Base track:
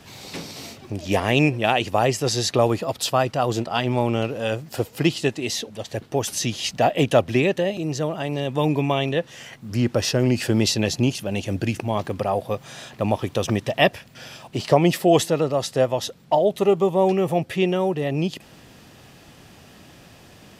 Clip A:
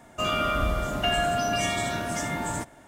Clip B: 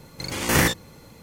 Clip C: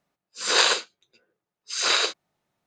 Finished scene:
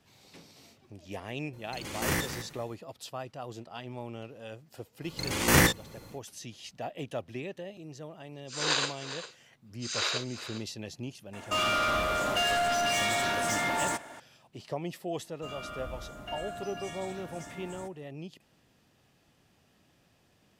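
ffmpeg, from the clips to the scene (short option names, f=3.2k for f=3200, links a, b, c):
-filter_complex "[2:a]asplit=2[a][b];[1:a]asplit=2[c][d];[0:a]volume=-19dB[e];[a]aecho=1:1:212|424:0.282|0.0479[f];[3:a]aecho=1:1:402:0.224[g];[c]asplit=2[h][i];[i]highpass=f=720:p=1,volume=23dB,asoftclip=type=tanh:threshold=-12dB[j];[h][j]amix=inputs=2:normalize=0,lowpass=f=7.7k:p=1,volume=-6dB[k];[f]atrim=end=1.22,asetpts=PTS-STARTPTS,volume=-10.5dB,afade=t=in:d=0.004:c=hsin,afade=t=out:st=1.216:d=0.004:c=hsin,adelay=1530[l];[b]atrim=end=1.22,asetpts=PTS-STARTPTS,volume=-2dB,afade=t=in:d=0.1,afade=t=out:st=1.12:d=0.1,adelay=4990[m];[g]atrim=end=2.66,asetpts=PTS-STARTPTS,volume=-9dB,afade=t=in:d=0.004:c=hsin,afade=t=out:st=2.656:d=0.004:c=hsin,adelay=8120[n];[k]atrim=end=2.87,asetpts=PTS-STARTPTS,volume=-9dB,afade=t=in:d=0.004:c=hsin,afade=t=out:st=2.866:d=0.004:c=hsin,adelay=11330[o];[d]atrim=end=2.87,asetpts=PTS-STARTPTS,volume=-16dB,afade=t=in:d=0.004:c=hsin,afade=t=out:st=2.866:d=0.004:c=hsin,adelay=672084S[p];[e][l][m][n][o][p]amix=inputs=6:normalize=0"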